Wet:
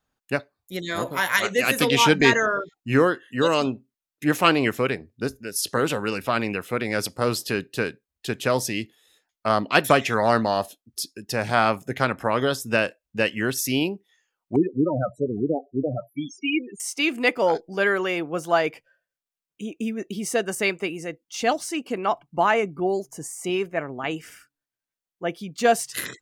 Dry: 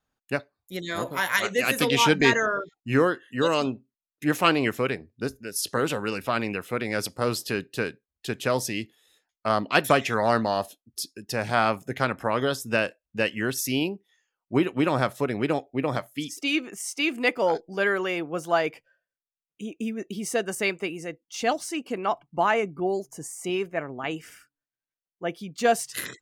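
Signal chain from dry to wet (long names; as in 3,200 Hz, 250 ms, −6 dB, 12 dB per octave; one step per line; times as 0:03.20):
0:14.56–0:16.80: spectral peaks only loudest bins 8
level +2.5 dB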